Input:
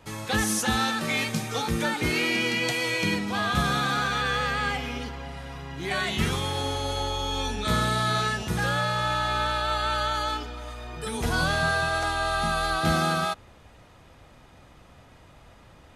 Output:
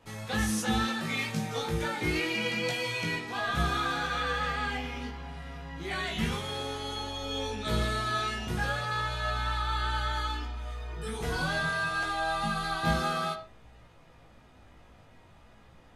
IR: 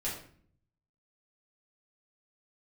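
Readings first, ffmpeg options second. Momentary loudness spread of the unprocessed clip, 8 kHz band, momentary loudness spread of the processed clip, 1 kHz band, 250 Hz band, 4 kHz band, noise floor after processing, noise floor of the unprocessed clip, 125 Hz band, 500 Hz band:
10 LU, -7.5 dB, 9 LU, -5.0 dB, -4.5 dB, -5.5 dB, -56 dBFS, -53 dBFS, -4.5 dB, -5.0 dB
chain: -filter_complex "[0:a]flanger=delay=17:depth=2.5:speed=0.3,asplit=2[a][b];[1:a]atrim=start_sample=2205,afade=t=out:st=0.19:d=0.01,atrim=end_sample=8820,lowpass=5.3k[c];[b][c]afir=irnorm=-1:irlink=0,volume=-7dB[d];[a][d]amix=inputs=2:normalize=0,volume=-4.5dB"

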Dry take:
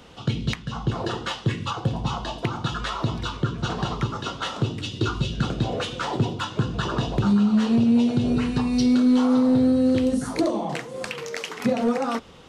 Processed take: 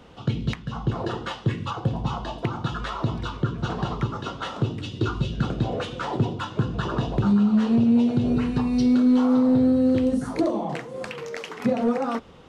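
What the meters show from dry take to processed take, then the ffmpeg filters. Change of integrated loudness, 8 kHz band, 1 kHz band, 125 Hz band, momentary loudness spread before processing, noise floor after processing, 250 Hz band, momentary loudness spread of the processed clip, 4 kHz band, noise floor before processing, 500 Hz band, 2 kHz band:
-0.5 dB, n/a, -1.0 dB, 0.0 dB, 10 LU, -41 dBFS, 0.0 dB, 11 LU, -5.5 dB, -41 dBFS, -0.5 dB, -3.0 dB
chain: -af "highshelf=f=2.6k:g=-9"

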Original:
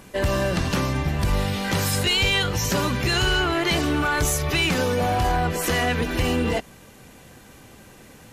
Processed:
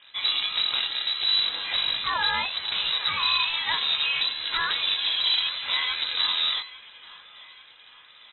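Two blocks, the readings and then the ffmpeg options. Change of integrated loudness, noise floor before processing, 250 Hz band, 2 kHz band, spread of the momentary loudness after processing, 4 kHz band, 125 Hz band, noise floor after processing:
-1.0 dB, -48 dBFS, under -25 dB, -3.5 dB, 4 LU, +5.0 dB, under -25 dB, -52 dBFS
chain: -filter_complex "[0:a]flanger=delay=19:depth=5.8:speed=2.2,acrossover=split=450[a][b];[a]acrusher=bits=5:dc=4:mix=0:aa=0.000001[c];[b]aecho=1:1:845|1690|2535|3380:0.141|0.0706|0.0353|0.0177[d];[c][d]amix=inputs=2:normalize=0,lowpass=f=3.4k:t=q:w=0.5098,lowpass=f=3.4k:t=q:w=0.6013,lowpass=f=3.4k:t=q:w=0.9,lowpass=f=3.4k:t=q:w=2.563,afreqshift=-4000,volume=-1dB"

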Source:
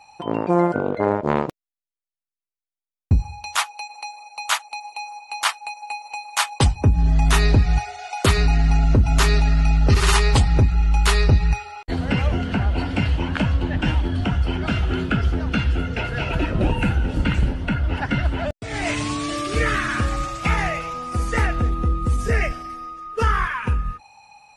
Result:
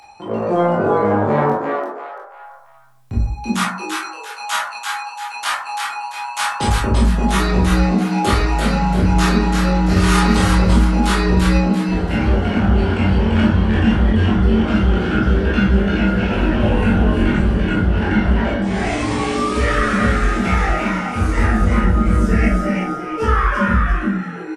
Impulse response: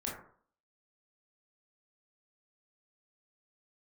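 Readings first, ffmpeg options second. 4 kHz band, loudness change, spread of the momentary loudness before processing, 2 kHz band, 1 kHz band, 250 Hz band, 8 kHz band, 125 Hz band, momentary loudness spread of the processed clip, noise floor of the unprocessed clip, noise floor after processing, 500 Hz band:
+1.0 dB, +4.0 dB, 12 LU, +4.0 dB, +5.5 dB, +9.0 dB, 0.0 dB, +2.5 dB, 9 LU, under -85 dBFS, -34 dBFS, +6.0 dB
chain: -filter_complex "[0:a]flanger=delay=16:depth=5.5:speed=0.26,acrossover=split=380|850[a][b][c];[a]alimiter=limit=-19.5dB:level=0:latency=1[d];[d][b][c]amix=inputs=3:normalize=0,acompressor=mode=upward:threshold=-43dB:ratio=2.5,asplit=2[e][f];[f]asoftclip=type=hard:threshold=-20dB,volume=-11.5dB[g];[e][g]amix=inputs=2:normalize=0,asplit=5[h][i][j][k][l];[i]adelay=340,afreqshift=130,volume=-4dB[m];[j]adelay=680,afreqshift=260,volume=-13.1dB[n];[k]adelay=1020,afreqshift=390,volume=-22.2dB[o];[l]adelay=1360,afreqshift=520,volume=-31.4dB[p];[h][m][n][o][p]amix=inputs=5:normalize=0[q];[1:a]atrim=start_sample=2205,afade=t=out:st=0.33:d=0.01,atrim=end_sample=14994,asetrate=41454,aresample=44100[r];[q][r]afir=irnorm=-1:irlink=0,volume=1.5dB"

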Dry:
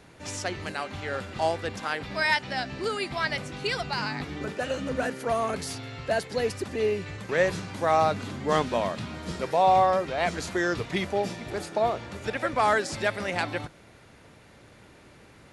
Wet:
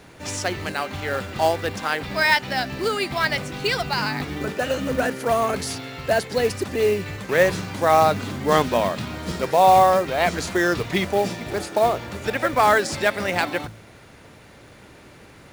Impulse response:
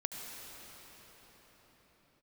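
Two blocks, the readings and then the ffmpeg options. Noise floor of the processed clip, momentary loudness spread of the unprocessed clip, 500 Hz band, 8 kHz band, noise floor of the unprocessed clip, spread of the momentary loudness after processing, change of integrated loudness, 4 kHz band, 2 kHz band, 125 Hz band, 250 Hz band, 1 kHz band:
-47 dBFS, 10 LU, +6.0 dB, +7.0 dB, -53 dBFS, 10 LU, +6.0 dB, +6.0 dB, +6.0 dB, +5.5 dB, +6.0 dB, +6.0 dB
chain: -af "bandreject=f=54.67:t=h:w=4,bandreject=f=109.34:t=h:w=4,bandreject=f=164.01:t=h:w=4,bandreject=f=218.68:t=h:w=4,acrusher=bits=5:mode=log:mix=0:aa=0.000001,volume=6dB"

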